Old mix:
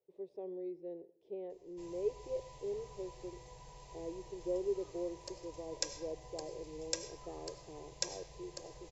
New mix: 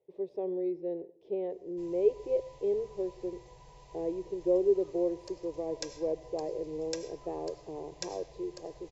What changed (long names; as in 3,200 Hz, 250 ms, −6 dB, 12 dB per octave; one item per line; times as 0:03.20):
speech +10.0 dB
master: add high-frequency loss of the air 61 metres